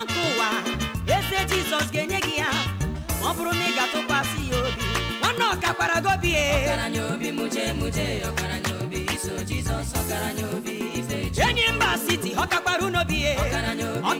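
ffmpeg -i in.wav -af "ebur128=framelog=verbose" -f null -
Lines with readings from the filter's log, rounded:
Integrated loudness:
  I:         -24.1 LUFS
  Threshold: -34.1 LUFS
Loudness range:
  LRA:         4.0 LU
  Threshold: -44.2 LUFS
  LRA low:   -26.9 LUFS
  LRA high:  -22.9 LUFS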